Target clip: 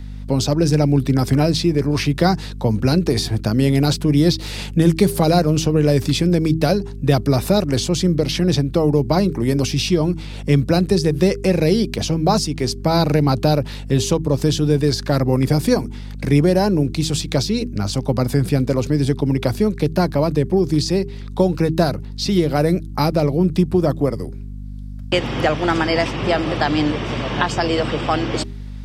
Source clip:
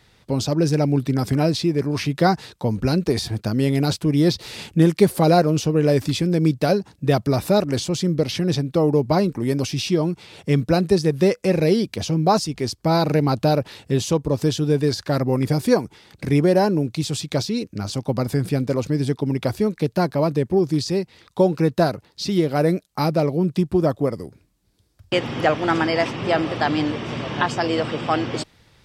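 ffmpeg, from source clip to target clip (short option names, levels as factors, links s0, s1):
-filter_complex "[0:a]aeval=exprs='val(0)+0.02*(sin(2*PI*50*n/s)+sin(2*PI*2*50*n/s)/2+sin(2*PI*3*50*n/s)/3+sin(2*PI*4*50*n/s)/4+sin(2*PI*5*50*n/s)/5)':c=same,acrossover=split=220|3000[s0][s1][s2];[s1]acompressor=threshold=0.0891:ratio=2.5[s3];[s0][s3][s2]amix=inputs=3:normalize=0,bandreject=f=80.24:t=h:w=4,bandreject=f=160.48:t=h:w=4,bandreject=f=240.72:t=h:w=4,bandreject=f=320.96:t=h:w=4,bandreject=f=401.2:t=h:w=4,volume=1.68"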